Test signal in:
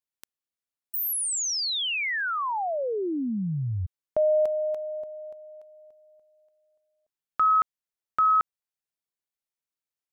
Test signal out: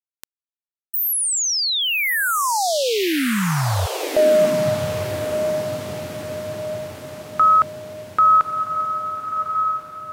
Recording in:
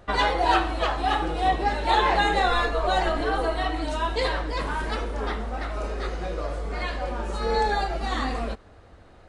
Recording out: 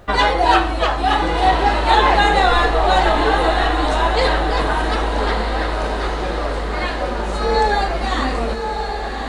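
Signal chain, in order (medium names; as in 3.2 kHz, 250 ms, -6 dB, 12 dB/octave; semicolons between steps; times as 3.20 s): word length cut 12-bit, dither none; echo that smears into a reverb 1188 ms, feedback 53%, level -6 dB; trim +7 dB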